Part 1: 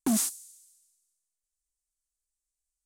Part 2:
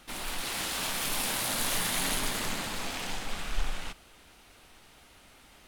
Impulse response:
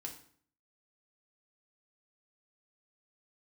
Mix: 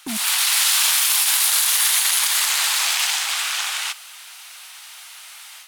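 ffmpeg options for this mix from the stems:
-filter_complex "[0:a]dynaudnorm=f=150:g=9:m=15dB,volume=-5dB[a];[1:a]highpass=f=870:w=0.5412,highpass=f=870:w=1.3066,highshelf=f=2.5k:g=11,dynaudnorm=f=140:g=3:m=8.5dB,volume=2.5dB[b];[a][b]amix=inputs=2:normalize=0,alimiter=limit=-7dB:level=0:latency=1:release=34"

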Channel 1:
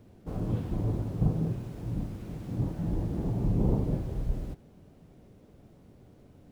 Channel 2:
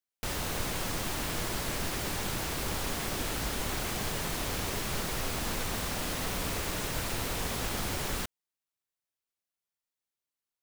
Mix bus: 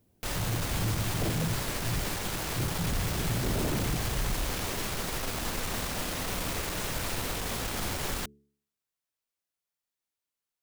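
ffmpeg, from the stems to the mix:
-filter_complex "[0:a]aemphasis=mode=production:type=75fm,afwtdn=0.126,volume=3dB[a];[1:a]bandreject=f=71.4:t=h:w=4,bandreject=f=142.8:t=h:w=4,bandreject=f=214.2:t=h:w=4,bandreject=f=285.6:t=h:w=4,bandreject=f=357:t=h:w=4,bandreject=f=428.4:t=h:w=4,aeval=exprs='(tanh(15.8*val(0)+0.5)-tanh(0.5))/15.8':c=same,volume=3dB[b];[a][b]amix=inputs=2:normalize=0,aeval=exprs='0.0668*(abs(mod(val(0)/0.0668+3,4)-2)-1)':c=same"

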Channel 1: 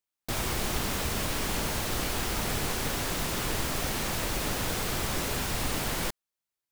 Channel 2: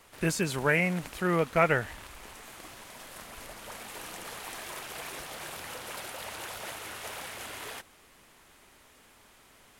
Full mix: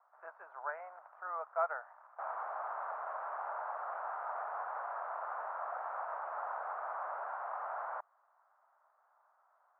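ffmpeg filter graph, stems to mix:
-filter_complex "[0:a]adelay=1900,volume=-1dB[a];[1:a]volume=-6.5dB[b];[a][b]amix=inputs=2:normalize=0,asuperpass=centerf=950:order=8:qfactor=1.2"

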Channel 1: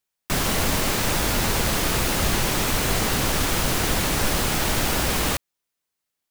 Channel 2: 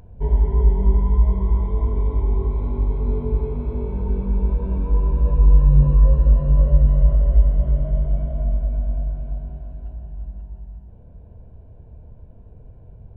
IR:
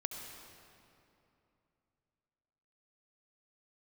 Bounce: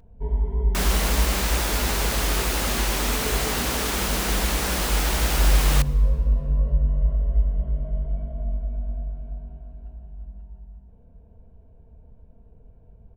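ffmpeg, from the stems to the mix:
-filter_complex "[0:a]highpass=f=250:p=1,adelay=450,volume=-3dB,asplit=2[a][b];[b]volume=-15.5dB[c];[1:a]aecho=1:1:4.4:0.43,volume=-7.5dB[d];[2:a]atrim=start_sample=2205[e];[c][e]afir=irnorm=-1:irlink=0[f];[a][d][f]amix=inputs=3:normalize=0"

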